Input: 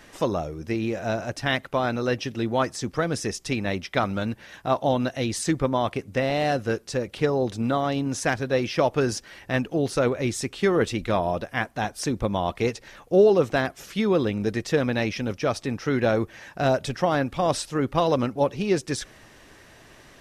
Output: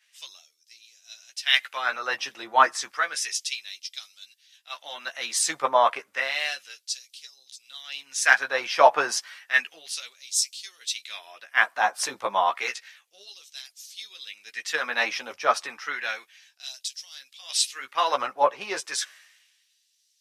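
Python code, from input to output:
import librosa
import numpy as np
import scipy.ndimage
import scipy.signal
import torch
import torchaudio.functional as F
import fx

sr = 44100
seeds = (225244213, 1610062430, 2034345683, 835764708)

y = fx.filter_lfo_highpass(x, sr, shape='sine', hz=0.31, low_hz=930.0, high_hz=4800.0, q=1.4)
y = fx.chorus_voices(y, sr, voices=2, hz=0.2, base_ms=14, depth_ms=1.4, mix_pct=35)
y = fx.band_widen(y, sr, depth_pct=70)
y = F.gain(torch.from_numpy(y), 5.5).numpy()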